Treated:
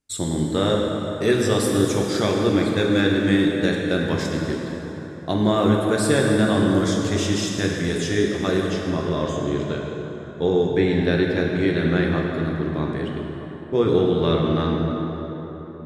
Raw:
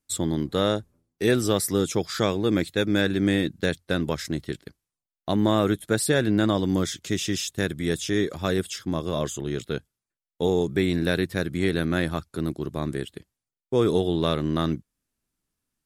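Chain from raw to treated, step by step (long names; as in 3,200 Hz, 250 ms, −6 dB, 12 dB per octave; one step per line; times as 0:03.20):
low-pass filter 9,100 Hz 12 dB per octave, from 0:08.62 4,300 Hz
dense smooth reverb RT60 4.1 s, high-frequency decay 0.55×, DRR −1.5 dB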